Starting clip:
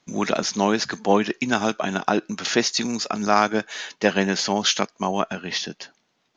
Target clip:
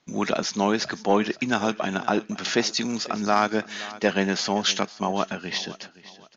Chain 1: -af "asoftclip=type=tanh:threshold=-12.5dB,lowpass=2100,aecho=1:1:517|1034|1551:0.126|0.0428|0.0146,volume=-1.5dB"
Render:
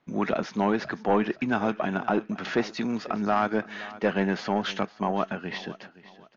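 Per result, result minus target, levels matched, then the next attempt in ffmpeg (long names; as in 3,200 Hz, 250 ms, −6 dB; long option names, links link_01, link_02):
8,000 Hz band −15.5 dB; soft clipping: distortion +10 dB
-af "asoftclip=type=tanh:threshold=-12.5dB,lowpass=6700,aecho=1:1:517|1034|1551:0.126|0.0428|0.0146,volume=-1.5dB"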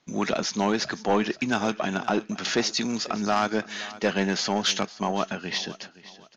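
soft clipping: distortion +10 dB
-af "asoftclip=type=tanh:threshold=-4.5dB,lowpass=6700,aecho=1:1:517|1034|1551:0.126|0.0428|0.0146,volume=-1.5dB"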